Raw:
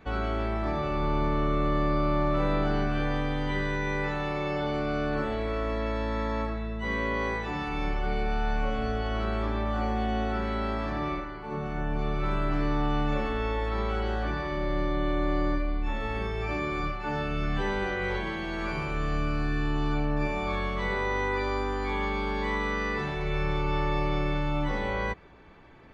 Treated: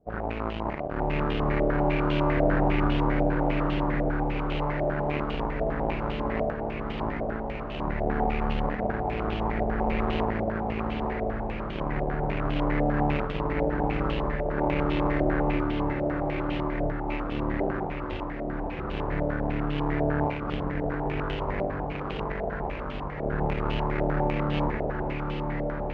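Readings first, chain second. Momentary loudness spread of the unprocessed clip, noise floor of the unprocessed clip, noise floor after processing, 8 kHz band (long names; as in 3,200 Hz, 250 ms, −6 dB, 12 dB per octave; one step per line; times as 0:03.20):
4 LU, −34 dBFS, −33 dBFS, can't be measured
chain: running median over 41 samples
harmonic generator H 7 −15 dB, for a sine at −17 dBFS
on a send: feedback delay with all-pass diffusion 1,190 ms, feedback 61%, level −4 dB
on the sum: low-pass on a step sequencer 10 Hz 670–3,000 Hz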